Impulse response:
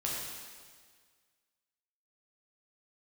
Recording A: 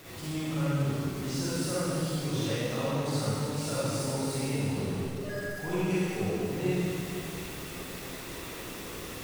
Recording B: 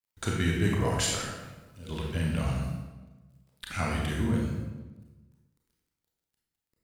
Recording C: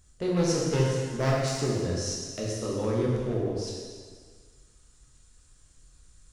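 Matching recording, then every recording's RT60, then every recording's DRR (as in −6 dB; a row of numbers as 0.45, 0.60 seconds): C; 2.8, 1.2, 1.7 seconds; −10.5, −2.5, −5.0 decibels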